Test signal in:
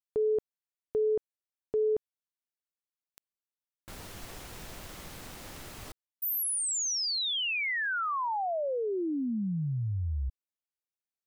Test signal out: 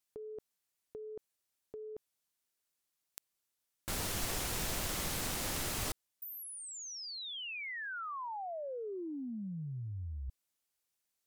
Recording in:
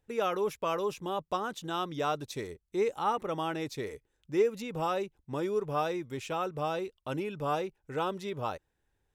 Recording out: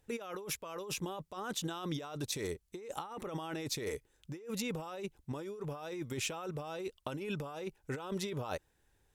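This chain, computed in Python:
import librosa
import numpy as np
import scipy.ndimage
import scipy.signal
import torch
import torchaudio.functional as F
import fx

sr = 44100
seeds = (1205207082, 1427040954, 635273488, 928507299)

y = fx.peak_eq(x, sr, hz=10000.0, db=5.5, octaves=2.2)
y = fx.over_compress(y, sr, threshold_db=-39.0, ratio=-1.0)
y = y * librosa.db_to_amplitude(-1.5)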